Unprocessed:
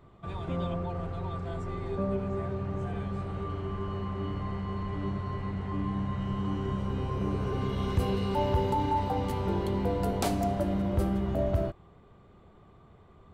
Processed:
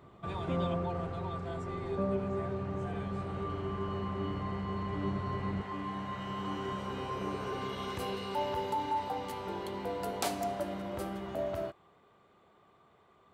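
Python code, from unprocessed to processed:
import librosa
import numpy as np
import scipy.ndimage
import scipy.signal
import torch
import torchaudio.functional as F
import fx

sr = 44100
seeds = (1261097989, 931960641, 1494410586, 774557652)

y = fx.highpass(x, sr, hz=fx.steps((0.0, 140.0), (5.62, 690.0)), slope=6)
y = fx.rider(y, sr, range_db=4, speed_s=2.0)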